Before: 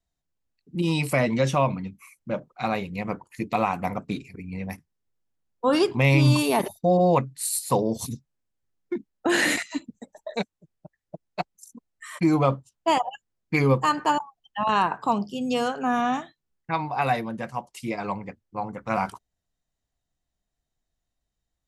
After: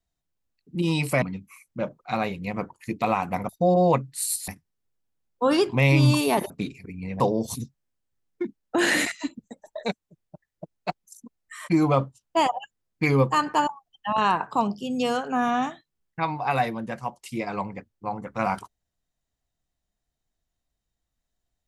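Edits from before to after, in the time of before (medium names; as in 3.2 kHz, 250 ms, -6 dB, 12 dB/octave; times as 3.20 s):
1.22–1.73 s: delete
4.00–4.70 s: swap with 6.72–7.71 s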